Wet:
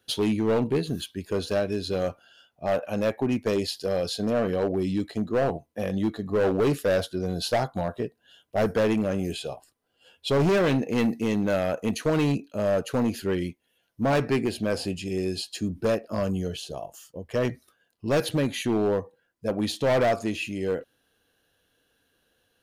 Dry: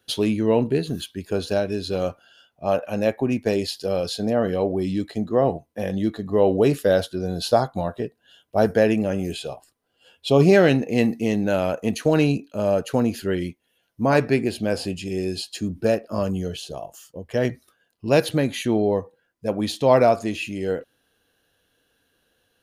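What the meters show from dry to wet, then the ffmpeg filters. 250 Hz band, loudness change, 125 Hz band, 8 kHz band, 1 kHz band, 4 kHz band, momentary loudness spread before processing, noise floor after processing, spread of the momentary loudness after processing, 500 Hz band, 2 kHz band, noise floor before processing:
−3.5 dB, −4.0 dB, −4.0 dB, −2.0 dB, −4.5 dB, −2.0 dB, 11 LU, −72 dBFS, 9 LU, −4.5 dB, −3.5 dB, −70 dBFS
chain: -af "asoftclip=type=hard:threshold=-16.5dB,volume=-2dB"

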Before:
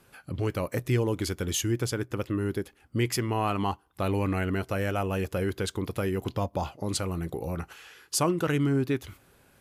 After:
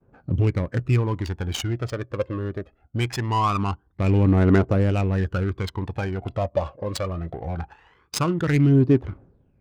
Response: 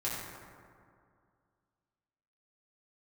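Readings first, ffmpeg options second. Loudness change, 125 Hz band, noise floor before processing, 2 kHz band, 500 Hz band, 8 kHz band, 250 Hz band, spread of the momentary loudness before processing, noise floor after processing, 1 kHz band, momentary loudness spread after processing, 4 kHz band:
+6.0 dB, +8.5 dB, −62 dBFS, +2.5 dB, +3.5 dB, −5.0 dB, +6.0 dB, 7 LU, −63 dBFS, +4.5 dB, 14 LU, +1.0 dB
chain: -af "agate=range=-33dB:threshold=-53dB:ratio=3:detection=peak,aphaser=in_gain=1:out_gain=1:delay=1.9:decay=0.7:speed=0.22:type=triangular,adynamicsmooth=sensitivity=3:basefreq=970,volume=2.5dB"

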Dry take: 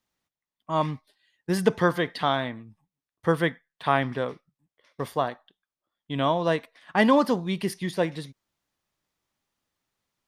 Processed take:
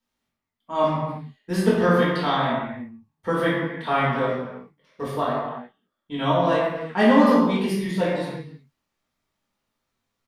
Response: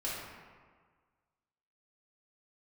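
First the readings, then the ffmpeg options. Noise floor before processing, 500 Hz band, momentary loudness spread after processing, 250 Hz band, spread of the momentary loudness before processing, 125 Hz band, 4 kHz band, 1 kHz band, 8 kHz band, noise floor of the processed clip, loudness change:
below −85 dBFS, +4.0 dB, 17 LU, +5.5 dB, 13 LU, +3.5 dB, +2.0 dB, +3.5 dB, can't be measured, −81 dBFS, +4.0 dB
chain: -filter_complex "[0:a]equalizer=frequency=230:width_type=o:width=0.32:gain=6.5,asplit=2[link_01][link_02];[link_02]adelay=21,volume=-7dB[link_03];[link_01][link_03]amix=inputs=2:normalize=0[link_04];[1:a]atrim=start_sample=2205,afade=type=out:start_time=0.42:duration=0.01,atrim=end_sample=18963[link_05];[link_04][link_05]afir=irnorm=-1:irlink=0,volume=-1.5dB"

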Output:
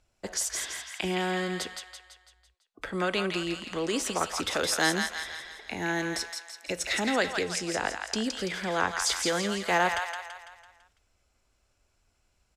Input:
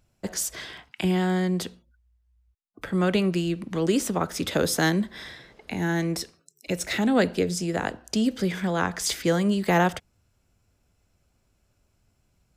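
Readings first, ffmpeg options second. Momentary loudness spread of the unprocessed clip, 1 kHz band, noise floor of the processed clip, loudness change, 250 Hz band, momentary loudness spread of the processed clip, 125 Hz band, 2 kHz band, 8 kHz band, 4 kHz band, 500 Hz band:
15 LU, −0.5 dB, −72 dBFS, −4.0 dB, −9.0 dB, 12 LU, −11.5 dB, +1.5 dB, +0.5 dB, +1.5 dB, −4.5 dB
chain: -filter_complex "[0:a]lowpass=9600,equalizer=frequency=150:width=0.74:gain=-12,acrossover=split=730[link_01][link_02];[link_01]alimiter=limit=-23.5dB:level=0:latency=1[link_03];[link_02]aecho=1:1:167|334|501|668|835|1002:0.596|0.292|0.143|0.0701|0.0343|0.0168[link_04];[link_03][link_04]amix=inputs=2:normalize=0"

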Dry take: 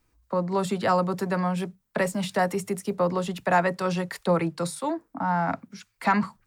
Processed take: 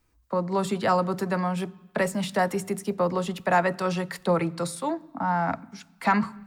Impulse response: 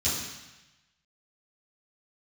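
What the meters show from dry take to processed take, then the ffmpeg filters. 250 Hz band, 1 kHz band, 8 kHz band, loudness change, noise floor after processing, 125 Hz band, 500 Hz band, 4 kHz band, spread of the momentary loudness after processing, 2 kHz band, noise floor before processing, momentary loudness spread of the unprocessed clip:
0.0 dB, 0.0 dB, 0.0 dB, 0.0 dB, −61 dBFS, −0.5 dB, 0.0 dB, 0.0 dB, 7 LU, 0.0 dB, −72 dBFS, 7 LU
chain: -filter_complex "[0:a]asplit=2[link_01][link_02];[1:a]atrim=start_sample=2205,lowpass=3500[link_03];[link_02][link_03]afir=irnorm=-1:irlink=0,volume=-28dB[link_04];[link_01][link_04]amix=inputs=2:normalize=0"

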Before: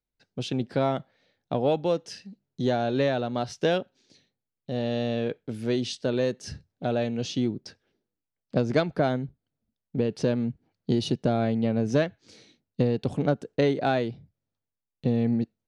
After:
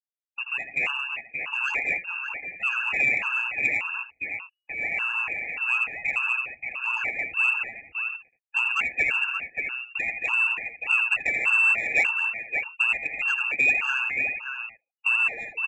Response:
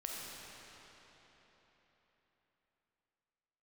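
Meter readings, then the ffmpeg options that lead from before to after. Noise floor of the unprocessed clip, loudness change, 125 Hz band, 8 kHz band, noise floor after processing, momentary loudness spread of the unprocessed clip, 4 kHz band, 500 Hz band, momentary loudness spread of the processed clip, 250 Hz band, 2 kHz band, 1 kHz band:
below −85 dBFS, +3.5 dB, below −20 dB, can't be measured, −85 dBFS, 10 LU, +2.5 dB, −18.0 dB, 11 LU, −23.5 dB, +18.0 dB, −2.0 dB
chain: -filter_complex "[0:a]anlmdn=0.0158,agate=range=-33dB:threshold=-44dB:ratio=3:detection=peak,aecho=1:1:5:0.87,acrossover=split=150|1800[link_01][link_02][link_03];[link_02]acrusher=samples=28:mix=1:aa=0.000001:lfo=1:lforange=16.8:lforate=3.5[link_04];[link_03]asoftclip=type=tanh:threshold=-35dB[link_05];[link_01][link_04][link_05]amix=inputs=3:normalize=0,lowpass=frequency=2500:width_type=q:width=0.5098,lowpass=frequency=2500:width_type=q:width=0.6013,lowpass=frequency=2500:width_type=q:width=0.9,lowpass=frequency=2500:width_type=q:width=2.563,afreqshift=-2900,asplit=2[link_06][link_07];[link_07]aecho=0:1:82|223|579|658:0.447|0.447|0.473|0.188[link_08];[link_06][link_08]amix=inputs=2:normalize=0,acontrast=83,afftfilt=real='re*gt(sin(2*PI*1.7*pts/sr)*(1-2*mod(floor(b*sr/1024/840),2)),0)':imag='im*gt(sin(2*PI*1.7*pts/sr)*(1-2*mod(floor(b*sr/1024/840),2)),0)':win_size=1024:overlap=0.75,volume=-7dB"

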